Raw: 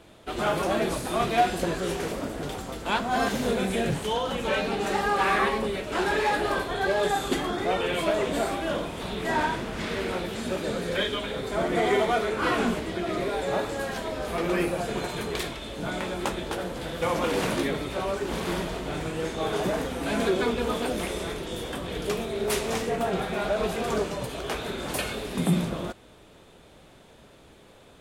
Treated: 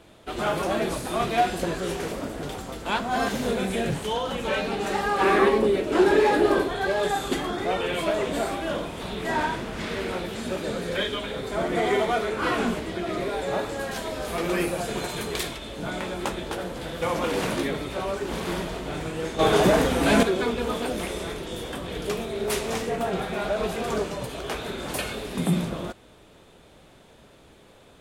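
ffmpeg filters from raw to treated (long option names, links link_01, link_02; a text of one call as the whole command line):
ffmpeg -i in.wav -filter_complex "[0:a]asettb=1/sr,asplit=3[link_01][link_02][link_03];[link_01]atrim=end=5.214[link_04];[link_02]atrim=start=5.21:end=6.69,asetpts=PTS-STARTPTS,afade=type=in:duration=0.004:curve=qsin,afade=type=out:start_time=1.476:duration=0.004:curve=qsin,equalizer=frequency=340:width_type=o:width=1.2:gain=11.5[link_05];[link_03]atrim=start=6.686[link_06];[link_04][link_05]acrossfade=duration=0.004:curve1=hsin:curve2=qsin[link_07];[link_07][link_06]acrossfade=duration=0.004:curve1=qsin:curve2=hsin,asettb=1/sr,asplit=3[link_08][link_09][link_10];[link_08]atrim=end=13.914[link_11];[link_09]atrim=start=13.91:end=15.58,asetpts=PTS-STARTPTS,afade=type=in:duration=0.004:curve=qsin,afade=type=out:start_time=1.666:duration=0.004:curve=qsin,highshelf=frequency=4300:gain=6.5[link_12];[link_10]atrim=start=15.576[link_13];[link_11][link_12]acrossfade=duration=0.004:curve1=hsin:curve2=qsin[link_14];[link_14][link_13]acrossfade=duration=0.004:curve1=qsin:curve2=hsin,asplit=3[link_15][link_16][link_17];[link_15]atrim=end=19.392[link_18];[link_16]atrim=start=19.388:end=20.232,asetpts=PTS-STARTPTS,volume=8.5dB[link_19];[link_17]atrim=start=20.228[link_20];[link_18][link_19]acrossfade=duration=0.004:curve1=hsin:curve2=hsin[link_21];[link_21][link_20]acrossfade=duration=0.004:curve1=hsin:curve2=hsin" out.wav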